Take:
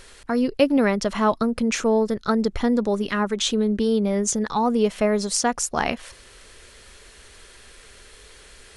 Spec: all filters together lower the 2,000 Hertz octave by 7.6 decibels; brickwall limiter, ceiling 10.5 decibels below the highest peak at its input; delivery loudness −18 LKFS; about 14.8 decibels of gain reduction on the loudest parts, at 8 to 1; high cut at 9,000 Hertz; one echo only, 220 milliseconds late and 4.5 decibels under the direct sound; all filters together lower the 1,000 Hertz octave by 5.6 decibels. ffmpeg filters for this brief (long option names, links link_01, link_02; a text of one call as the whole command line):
ffmpeg -i in.wav -af "lowpass=9000,equalizer=frequency=1000:width_type=o:gain=-5.5,equalizer=frequency=2000:width_type=o:gain=-8,acompressor=threshold=-31dB:ratio=8,alimiter=level_in=3.5dB:limit=-24dB:level=0:latency=1,volume=-3.5dB,aecho=1:1:220:0.596,volume=17.5dB" out.wav